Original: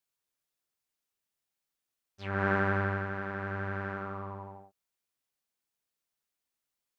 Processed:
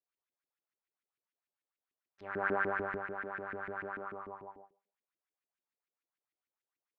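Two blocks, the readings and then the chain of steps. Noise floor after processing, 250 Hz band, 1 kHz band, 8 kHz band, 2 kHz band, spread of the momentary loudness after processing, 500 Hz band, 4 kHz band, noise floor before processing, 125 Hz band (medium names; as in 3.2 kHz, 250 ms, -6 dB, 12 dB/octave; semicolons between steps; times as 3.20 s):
under -85 dBFS, -9.5 dB, -3.5 dB, no reading, -3.5 dB, 16 LU, -3.0 dB, under -10 dB, under -85 dBFS, -18.5 dB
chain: Schroeder reverb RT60 0.56 s, DRR 17 dB; LFO band-pass saw up 6.8 Hz 280–2400 Hz; trim +2.5 dB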